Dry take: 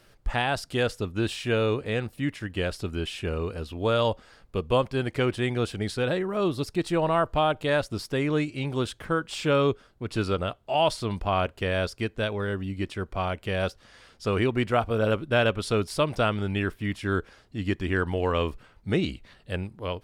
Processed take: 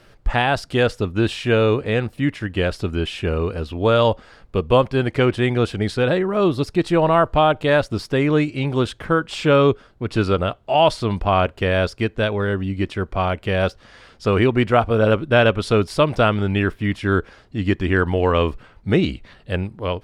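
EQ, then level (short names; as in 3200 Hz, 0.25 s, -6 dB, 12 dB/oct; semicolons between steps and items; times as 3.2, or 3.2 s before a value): LPF 3700 Hz 6 dB/oct; +8.0 dB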